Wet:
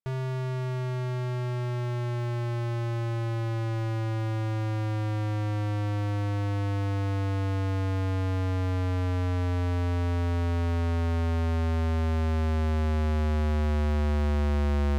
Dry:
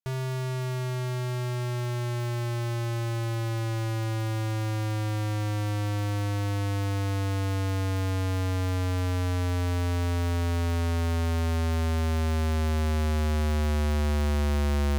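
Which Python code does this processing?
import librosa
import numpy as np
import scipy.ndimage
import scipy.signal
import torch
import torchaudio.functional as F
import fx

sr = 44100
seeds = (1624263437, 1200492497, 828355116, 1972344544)

y = fx.lowpass(x, sr, hz=2200.0, slope=6)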